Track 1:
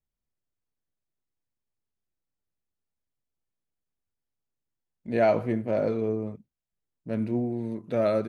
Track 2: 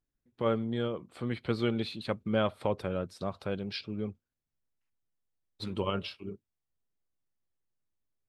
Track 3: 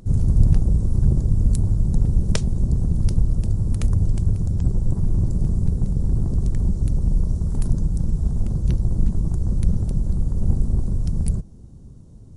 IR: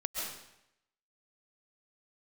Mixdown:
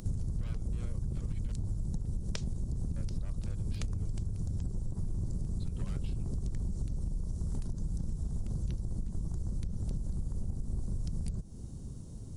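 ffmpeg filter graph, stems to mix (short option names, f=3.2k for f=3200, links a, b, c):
-filter_complex "[1:a]highpass=f=290:p=1,aeval=exprs='0.0282*(abs(mod(val(0)/0.0282+3,4)-2)-1)':c=same,volume=0.5dB,asplit=3[a][b][c];[a]atrim=end=1.52,asetpts=PTS-STARTPTS,afade=t=out:st=1.516:d=0.004:c=hsin[d];[b]atrim=start=1.52:end=2.96,asetpts=PTS-STARTPTS,volume=0[e];[c]atrim=start=2.96,asetpts=PTS-STARTPTS,afade=t=in:d=0.004:c=hsin[f];[d][e][f]concat=n=3:v=0:a=1[g];[2:a]acrossover=split=6900[h][i];[i]acompressor=threshold=-56dB:ratio=4:attack=1:release=60[j];[h][j]amix=inputs=2:normalize=0,highshelf=f=3.1k:g=9.5,acompressor=threshold=-17dB:ratio=6,volume=-0.5dB[k];[g]alimiter=level_in=13.5dB:limit=-24dB:level=0:latency=1:release=263,volume=-13.5dB,volume=0dB[l];[k][l]amix=inputs=2:normalize=0,acompressor=threshold=-31dB:ratio=6"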